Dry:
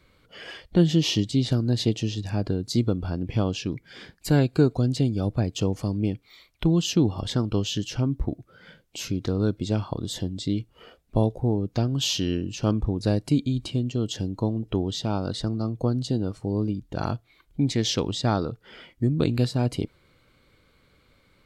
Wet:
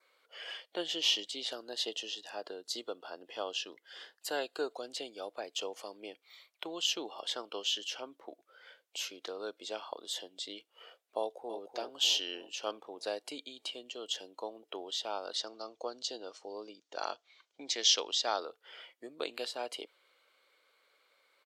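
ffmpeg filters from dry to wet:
-filter_complex "[0:a]asettb=1/sr,asplit=3[a][b][c];[a]atrim=end=1.524[d];[b]atrim=start=1.52:end=4.74,asetpts=PTS-STARTPTS,afade=t=in:d=0.004:c=qsin,afade=t=out:st=3.216:d=0.004:c=qsin,asuperstop=centerf=2300:order=4:qfactor=6.3[e];[c]atrim=start=4.736[f];[d][e]acrossfade=d=0.004:c1=hsin:c2=qsin[g];[g][f]acrossfade=d=0.004:c1=qsin:c2=hsin,asplit=2[h][i];[i]afade=t=in:st=11.19:d=0.01,afade=t=out:st=11.59:d=0.01,aecho=0:1:300|600|900|1200|1500|1800|2100:0.421697|0.231933|0.127563|0.0701598|0.0385879|0.0212233|0.0116728[j];[h][j]amix=inputs=2:normalize=0,asettb=1/sr,asplit=3[k][l][m];[k]atrim=end=15.364[n];[l]atrim=start=15.36:end=18.4,asetpts=PTS-STARTPTS,afade=t=in:d=0.004:c=qsin,afade=t=out:st=3.036:d=0.004:c=qsin,lowpass=f=6k:t=q:w=2.5[o];[m]atrim=start=18.396[p];[n][o]acrossfade=d=0.004:c1=hsin:c2=qsin[q];[q][p]acrossfade=d=0.004:c1=qsin:c2=hsin,highpass=f=500:w=0.5412,highpass=f=500:w=1.3066,adynamicequalizer=threshold=0.00282:dfrequency=3100:dqfactor=3.6:tfrequency=3100:tqfactor=3.6:attack=5:release=100:ratio=0.375:range=3.5:mode=boostabove:tftype=bell,volume=-5.5dB"

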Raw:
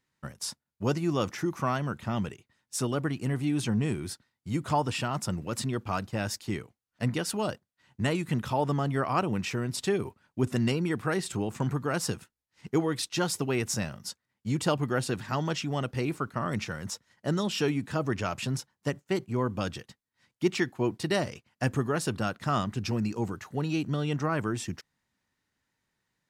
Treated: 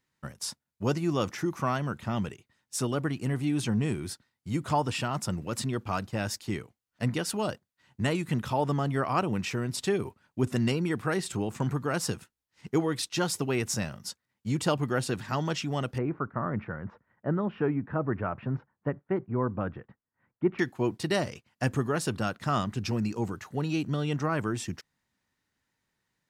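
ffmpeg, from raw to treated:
-filter_complex "[0:a]asettb=1/sr,asplit=3[a][b][c];[a]atrim=end=15.984[d];[b]atrim=start=15.98:end=20.59,asetpts=PTS-STARTPTS,afade=t=in:d=0.004:c=qsin,afade=t=out:st=4.606:d=0.004:c=qsin,lowpass=f=1.7k:w=0.5412,lowpass=f=1.7k:w=1.3066[e];[c]atrim=start=20.586[f];[d][e]acrossfade=d=0.004:c1=hsin:c2=qsin[g];[g][f]acrossfade=d=0.004:c1=qsin:c2=hsin"

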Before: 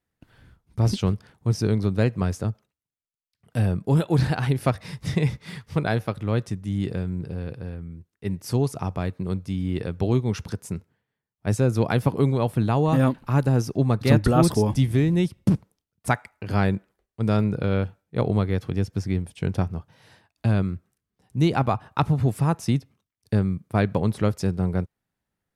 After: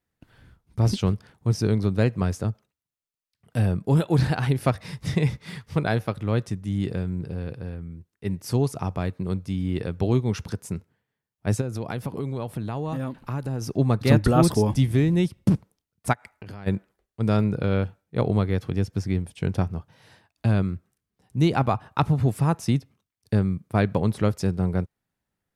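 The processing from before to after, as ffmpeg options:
-filter_complex "[0:a]asplit=3[a][b][c];[a]afade=t=out:st=11.6:d=0.02[d];[b]acompressor=threshold=-27dB:ratio=4:attack=3.2:release=140:knee=1:detection=peak,afade=t=in:st=11.6:d=0.02,afade=t=out:st=13.61:d=0.02[e];[c]afade=t=in:st=13.61:d=0.02[f];[d][e][f]amix=inputs=3:normalize=0,asplit=3[g][h][i];[g]afade=t=out:st=16.12:d=0.02[j];[h]acompressor=threshold=-35dB:ratio=10:attack=3.2:release=140:knee=1:detection=peak,afade=t=in:st=16.12:d=0.02,afade=t=out:st=16.66:d=0.02[k];[i]afade=t=in:st=16.66:d=0.02[l];[j][k][l]amix=inputs=3:normalize=0"

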